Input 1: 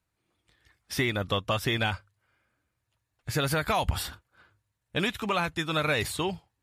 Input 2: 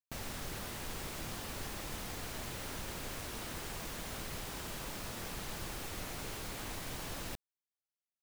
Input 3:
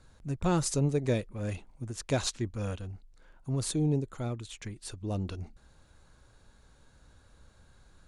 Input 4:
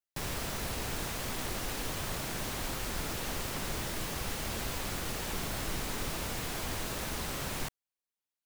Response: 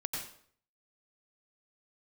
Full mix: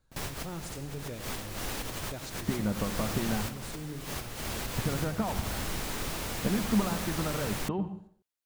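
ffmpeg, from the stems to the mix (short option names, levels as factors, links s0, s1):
-filter_complex "[0:a]acompressor=threshold=0.0178:ratio=5,lowpass=1100,equalizer=f=210:w=3.6:g=13,adelay=1500,volume=1.19,asplit=2[s0][s1];[s1]volume=0.376[s2];[1:a]acrossover=split=740[s3][s4];[s3]aeval=exprs='val(0)*(1-0.5/2+0.5/2*cos(2*PI*1.1*n/s))':c=same[s5];[s4]aeval=exprs='val(0)*(1-0.5/2-0.5/2*cos(2*PI*1.1*n/s))':c=same[s6];[s5][s6]amix=inputs=2:normalize=0,volume=0.282,asplit=2[s7][s8];[s8]volume=0.596[s9];[2:a]volume=0.15,asplit=3[s10][s11][s12];[s11]volume=0.447[s13];[3:a]volume=1.12[s14];[s12]apad=whole_len=372694[s15];[s14][s15]sidechaincompress=threshold=0.00224:ratio=12:attack=7.2:release=104[s16];[4:a]atrim=start_sample=2205[s17];[s2][s9][s13]amix=inputs=3:normalize=0[s18];[s18][s17]afir=irnorm=-1:irlink=0[s19];[s0][s7][s10][s16][s19]amix=inputs=5:normalize=0"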